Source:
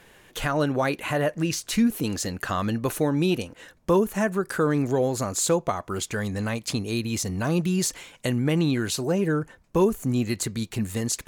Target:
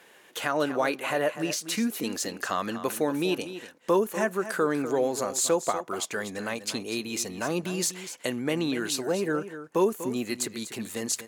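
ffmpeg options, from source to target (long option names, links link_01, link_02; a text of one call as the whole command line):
ffmpeg -i in.wav -af "highpass=300,aecho=1:1:244:0.251,volume=-1dB" out.wav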